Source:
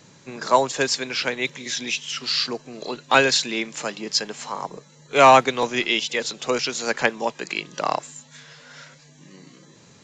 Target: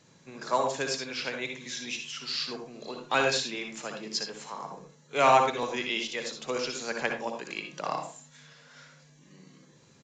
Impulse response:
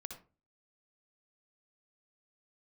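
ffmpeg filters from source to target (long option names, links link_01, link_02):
-filter_complex "[1:a]atrim=start_sample=2205[link_01];[0:a][link_01]afir=irnorm=-1:irlink=0,aresample=22050,aresample=44100,volume=-5dB"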